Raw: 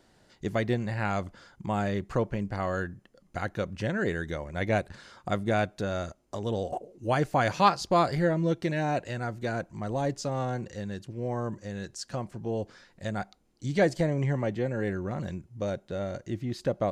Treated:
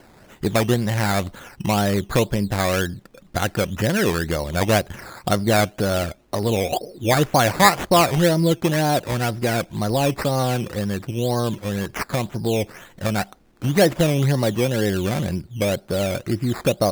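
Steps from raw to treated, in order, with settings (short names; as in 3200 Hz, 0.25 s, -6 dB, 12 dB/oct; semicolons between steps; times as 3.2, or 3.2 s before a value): in parallel at +2.5 dB: compressor, threshold -34 dBFS, peak gain reduction 17.5 dB; on the sum: decimation with a swept rate 12×, swing 60% 2 Hz; gain +5.5 dB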